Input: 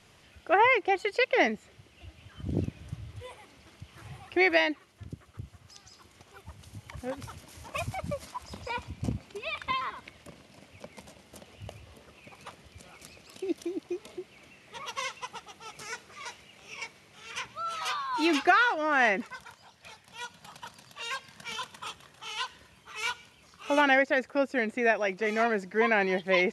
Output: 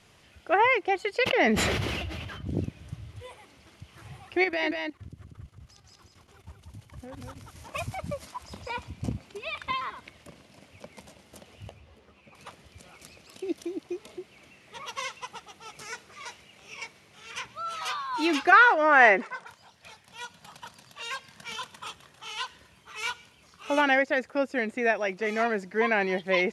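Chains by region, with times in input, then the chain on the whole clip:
1.23–2.47 s: peaking EQ 8.5 kHz -9 dB 1.1 oct + decay stretcher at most 21 dB/s
4.44–7.56 s: bass shelf 200 Hz +7.5 dB + level held to a coarse grid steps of 14 dB + delay 187 ms -4.5 dB
11.69–12.35 s: low-pass 3.3 kHz 6 dB/octave + three-phase chorus
18.52–19.47 s: Chebyshev band-pass 150–9300 Hz, order 4 + high-order bell 910 Hz +8 dB 3 oct + tape noise reduction on one side only decoder only
whole clip: none

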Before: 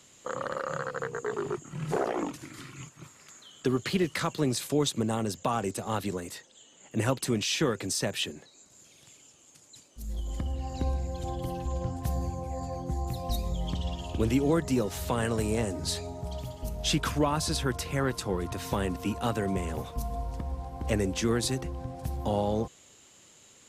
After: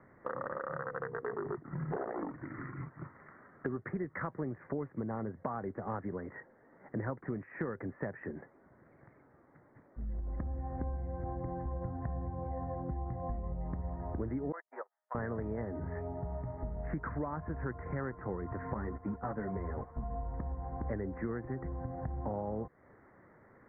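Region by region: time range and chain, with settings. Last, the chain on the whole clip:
14.52–15.15 s: gate -26 dBFS, range -46 dB + high-pass 680 Hz 24 dB/octave
18.74–20.04 s: gate -36 dBFS, range -9 dB + waveshaping leveller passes 1 + three-phase chorus
whole clip: steep low-pass 2 kHz 96 dB/octave; compression 4:1, threshold -39 dBFS; trim +3 dB

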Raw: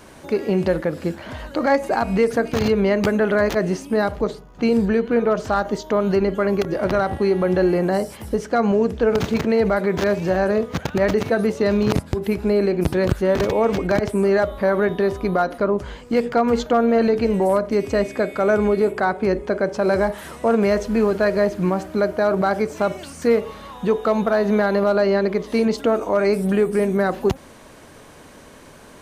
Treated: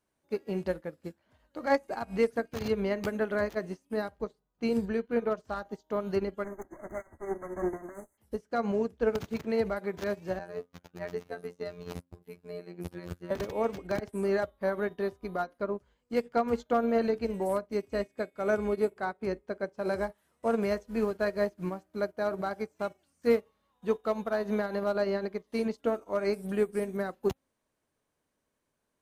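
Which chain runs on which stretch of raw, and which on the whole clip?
6.44–8.18 s: comb filter that takes the minimum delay 3.1 ms + brick-wall FIR band-stop 2.2–6.1 kHz + peaking EQ 5.4 kHz +8.5 dB 0.51 oct
10.39–13.31 s: expander -30 dBFS + hum notches 50/100/150/200/250/300/350 Hz + robot voice 87.5 Hz
whole clip: treble shelf 9.1 kHz +8 dB; de-hum 265.8 Hz, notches 15; upward expansion 2.5:1, over -34 dBFS; trim -6.5 dB

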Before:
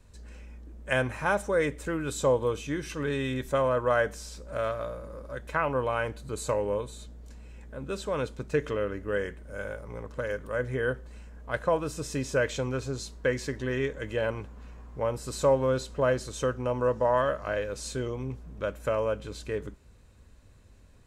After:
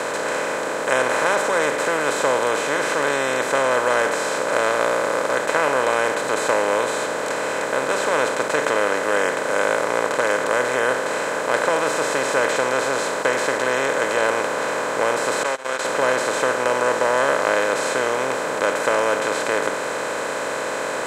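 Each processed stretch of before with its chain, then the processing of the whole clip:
15.43–15.85 s: Butterworth band-pass 4.2 kHz, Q 0.61 + gate -44 dBFS, range -55 dB + upward compressor, threshold -49 dBFS
whole clip: spectral levelling over time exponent 0.2; Bessel high-pass 210 Hz, order 2; bass shelf 340 Hz -7.5 dB; trim +1 dB

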